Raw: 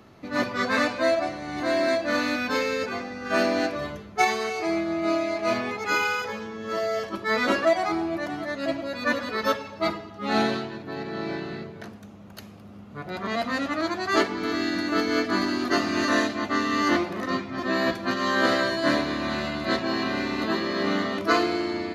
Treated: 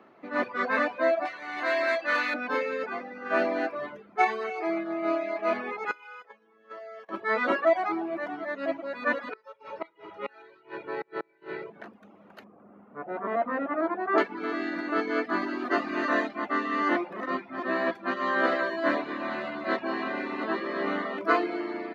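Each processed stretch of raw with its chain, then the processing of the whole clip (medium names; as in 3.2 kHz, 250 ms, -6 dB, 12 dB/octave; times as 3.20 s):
1.25–2.34 s: tilt shelf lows -9.5 dB, about 790 Hz + overload inside the chain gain 16.5 dB
5.91–7.09 s: gate -30 dBFS, range -18 dB + bass shelf 330 Hz -9.5 dB + compression 12:1, threshold -36 dBFS
9.33–11.70 s: peaking EQ 2.5 kHz +7.5 dB 0.32 oct + comb 2.1 ms, depth 99% + inverted gate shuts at -19 dBFS, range -25 dB
12.44–14.18 s: low-pass 1.6 kHz + dynamic bell 520 Hz, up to +4 dB, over -40 dBFS, Q 0.74
whole clip: bass shelf 180 Hz -10 dB; reverb removal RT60 0.53 s; three-band isolator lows -20 dB, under 190 Hz, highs -21 dB, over 2.6 kHz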